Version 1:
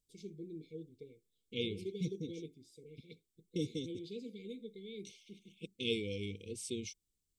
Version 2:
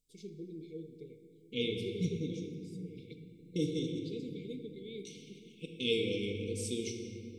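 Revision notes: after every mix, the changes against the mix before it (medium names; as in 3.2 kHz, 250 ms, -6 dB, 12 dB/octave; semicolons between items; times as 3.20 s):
reverb: on, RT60 2.8 s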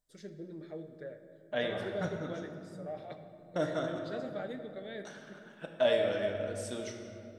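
second voice -4.0 dB; master: remove brick-wall FIR band-stop 500–2100 Hz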